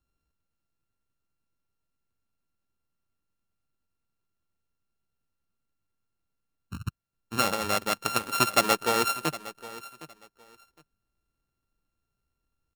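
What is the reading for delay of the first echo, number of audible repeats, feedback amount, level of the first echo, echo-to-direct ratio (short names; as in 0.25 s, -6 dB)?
0.762 s, 2, 20%, -17.0 dB, -17.0 dB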